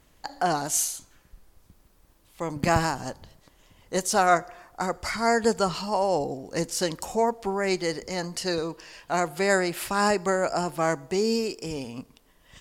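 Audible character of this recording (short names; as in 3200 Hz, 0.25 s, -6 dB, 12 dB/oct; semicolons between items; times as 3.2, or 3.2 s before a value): noise floor -60 dBFS; spectral tilt -3.5 dB/oct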